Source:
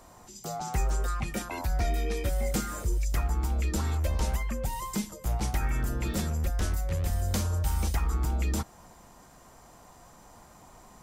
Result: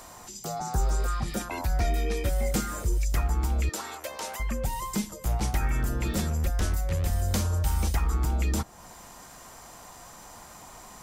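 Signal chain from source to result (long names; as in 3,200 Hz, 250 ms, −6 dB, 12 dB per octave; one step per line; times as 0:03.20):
0:00.59–0:01.37: healed spectral selection 1,700–5,300 Hz both
0:03.69–0:04.40: high-pass filter 520 Hz 12 dB per octave
one half of a high-frequency compander encoder only
level +2 dB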